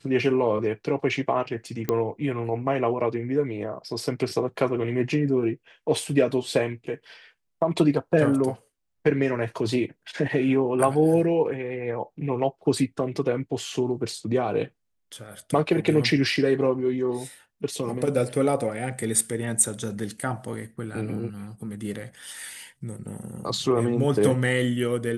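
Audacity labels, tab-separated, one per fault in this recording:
1.890000	1.890000	pop -11 dBFS

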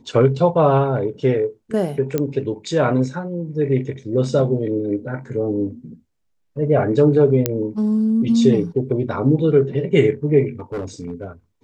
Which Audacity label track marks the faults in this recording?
2.180000	2.180000	pop -8 dBFS
7.460000	7.460000	pop -2 dBFS
10.590000	11.270000	clipped -22.5 dBFS

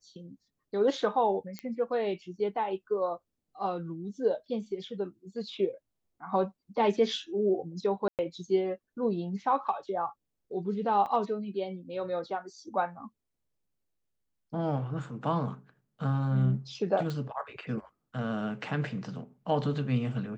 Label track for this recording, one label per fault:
1.590000	1.590000	pop -22 dBFS
8.080000	8.190000	dropout 108 ms
11.060000	11.070000	dropout 5.5 ms
17.100000	17.100000	pop -23 dBFS

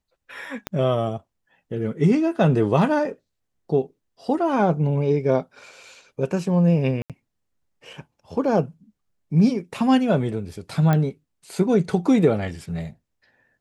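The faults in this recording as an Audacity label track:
0.670000	0.670000	pop -12 dBFS
7.020000	7.100000	dropout 77 ms
10.930000	10.930000	pop -10 dBFS

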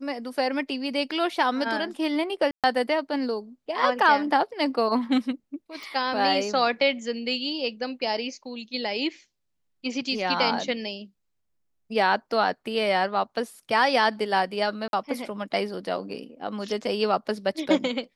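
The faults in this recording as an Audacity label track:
2.510000	2.640000	dropout 127 ms
5.830000	5.830000	pop
14.880000	14.930000	dropout 52 ms

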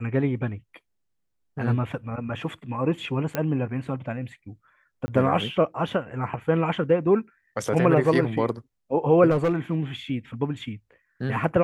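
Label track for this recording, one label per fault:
3.350000	3.350000	pop -11 dBFS
5.060000	5.080000	dropout 20 ms
9.300000	9.760000	clipped -18 dBFS

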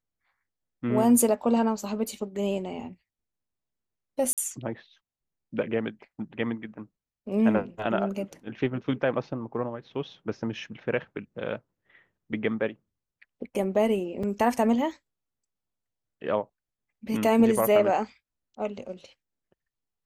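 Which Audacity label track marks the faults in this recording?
4.330000	4.380000	dropout 47 ms
14.230000	14.230000	dropout 4.5 ms

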